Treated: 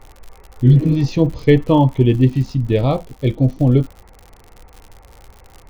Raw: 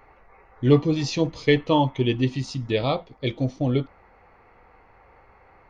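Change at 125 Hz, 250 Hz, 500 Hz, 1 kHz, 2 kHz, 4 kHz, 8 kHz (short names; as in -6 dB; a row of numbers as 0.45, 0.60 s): +11.0 dB, +7.5 dB, +4.5 dB, +3.0 dB, -0.5 dB, -3.0 dB, n/a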